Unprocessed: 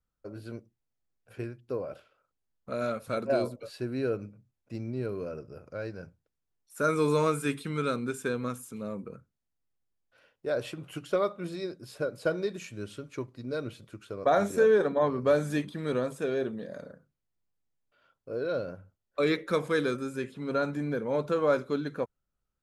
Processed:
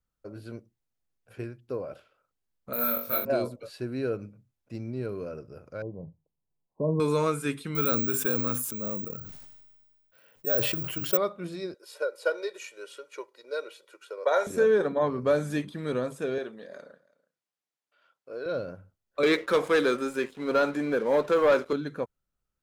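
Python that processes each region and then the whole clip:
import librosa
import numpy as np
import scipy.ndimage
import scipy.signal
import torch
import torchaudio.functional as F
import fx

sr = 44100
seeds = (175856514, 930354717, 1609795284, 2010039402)

y = fx.chain(x, sr, fx.low_shelf(hz=470.0, db=-8.5),
    fx.room_flutter(wall_m=3.6, rt60_s=0.41),
    fx.resample_bad(factor=3, down='filtered', up='zero_stuff'), at=(2.73, 3.25))
y = fx.chain(y, sr, fx.brickwall_lowpass(high_hz=1100.0),
    fx.peak_eq(hz=160.0, db=9.0, octaves=0.36), at=(5.82, 7.0))
y = fx.chain(y, sr, fx.resample_bad(factor=2, down='none', up='zero_stuff'),
    fx.sustainer(db_per_s=33.0), at=(7.75, 11.17))
y = fx.chain(y, sr, fx.highpass(hz=450.0, slope=24),
    fx.comb(ms=2.1, depth=0.61), at=(11.74, 14.47))
y = fx.chain(y, sr, fx.weighting(curve='A'),
    fx.echo_single(ms=331, db=-23.5), at=(16.38, 18.46))
y = fx.chain(y, sr, fx.highpass(hz=330.0, slope=12),
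    fx.high_shelf(hz=6200.0, db=-4.0),
    fx.leveller(passes=2), at=(19.23, 21.73))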